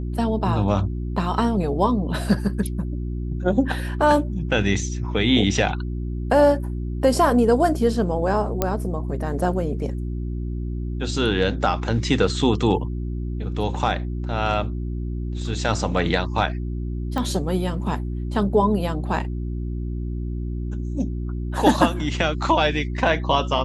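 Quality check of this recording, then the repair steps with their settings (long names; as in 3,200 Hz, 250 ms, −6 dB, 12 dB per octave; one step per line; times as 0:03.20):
mains hum 60 Hz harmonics 6 −27 dBFS
0:08.62: click −6 dBFS
0:17.18: click −13 dBFS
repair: click removal
hum removal 60 Hz, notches 6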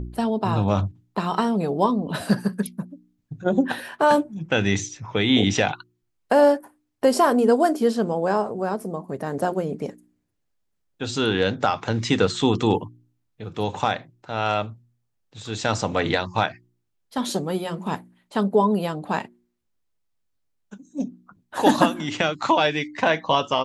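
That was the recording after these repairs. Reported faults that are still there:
0:17.18: click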